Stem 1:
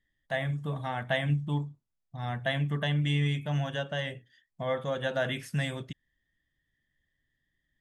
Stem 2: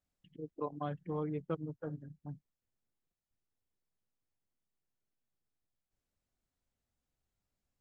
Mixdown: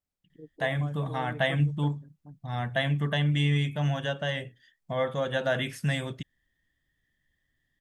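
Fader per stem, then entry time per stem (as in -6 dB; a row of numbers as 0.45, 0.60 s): +2.5, -3.5 dB; 0.30, 0.00 s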